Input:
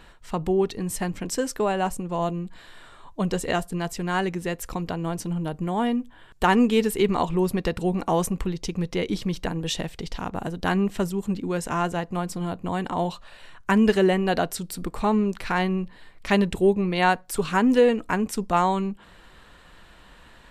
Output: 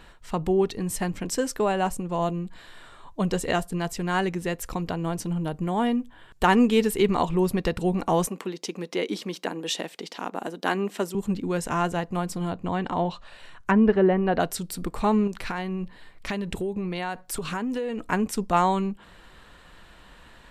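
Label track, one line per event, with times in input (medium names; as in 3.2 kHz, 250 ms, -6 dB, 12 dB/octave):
8.270000	11.150000	high-pass 240 Hz 24 dB/octave
12.480000	14.400000	low-pass that closes with the level closes to 1.5 kHz, closed at -17.5 dBFS
15.270000	18.120000	compression 10:1, threshold -25 dBFS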